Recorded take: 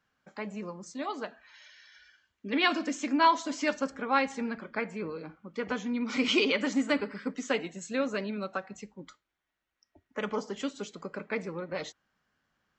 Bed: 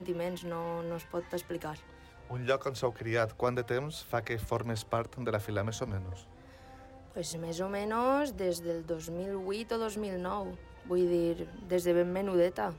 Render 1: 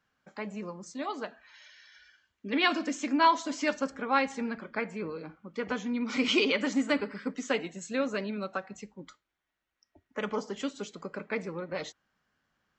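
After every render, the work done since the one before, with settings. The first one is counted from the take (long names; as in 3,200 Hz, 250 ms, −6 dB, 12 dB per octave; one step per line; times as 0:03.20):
no processing that can be heard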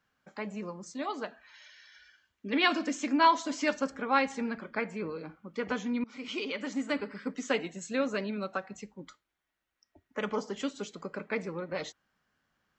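0:06.04–0:07.54: fade in, from −20 dB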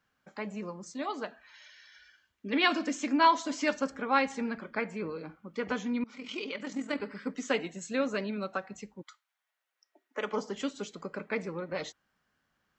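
0:06.15–0:07.00: amplitude modulation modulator 42 Hz, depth 35%
0:09.01–0:10.32: high-pass filter 1,000 Hz → 240 Hz 24 dB per octave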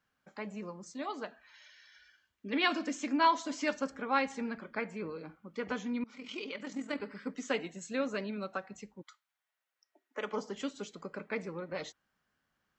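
level −3.5 dB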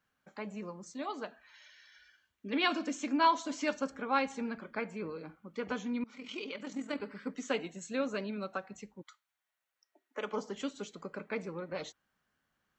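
notch filter 5,000 Hz, Q 16
dynamic equaliser 1,900 Hz, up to −6 dB, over −56 dBFS, Q 6.6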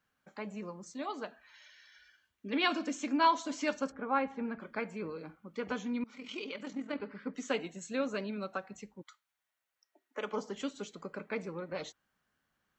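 0:03.91–0:04.59: low-pass filter 1,500 Hz → 2,300 Hz
0:06.71–0:07.34: high-frequency loss of the air 160 metres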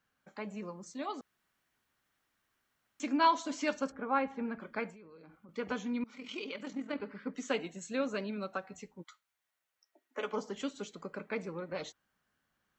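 0:01.21–0:03.00: fill with room tone
0:04.90–0:05.49: downward compressor 12 to 1, threshold −51 dBFS
0:08.66–0:10.32: double-tracking delay 12 ms −7.5 dB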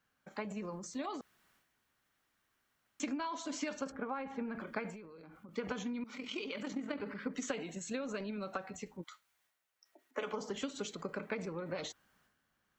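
downward compressor 10 to 1, threshold −37 dBFS, peak gain reduction 16 dB
transient designer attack +4 dB, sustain +8 dB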